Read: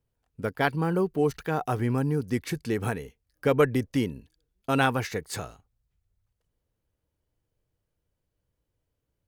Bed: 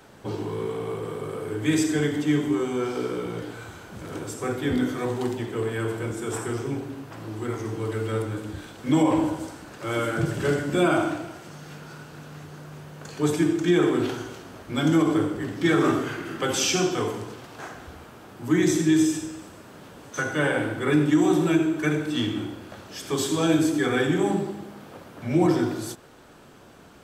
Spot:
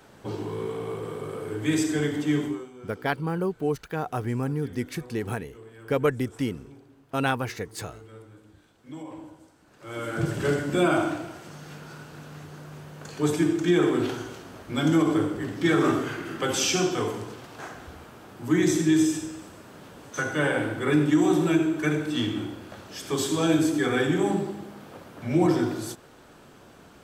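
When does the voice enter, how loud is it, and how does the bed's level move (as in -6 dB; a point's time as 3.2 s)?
2.45 s, -2.0 dB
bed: 2.45 s -2 dB
2.72 s -19.5 dB
9.54 s -19.5 dB
10.25 s -1 dB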